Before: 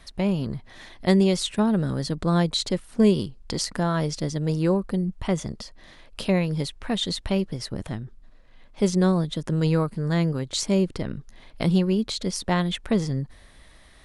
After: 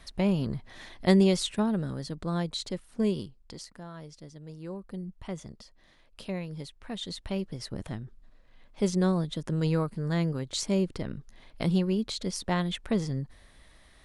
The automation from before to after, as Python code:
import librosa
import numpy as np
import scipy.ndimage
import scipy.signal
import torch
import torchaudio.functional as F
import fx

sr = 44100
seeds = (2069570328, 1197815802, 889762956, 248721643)

y = fx.gain(x, sr, db=fx.line((1.27, -2.0), (2.03, -9.0), (3.19, -9.0), (3.78, -19.5), (4.58, -19.5), (4.98, -12.5), (6.76, -12.5), (7.77, -5.0)))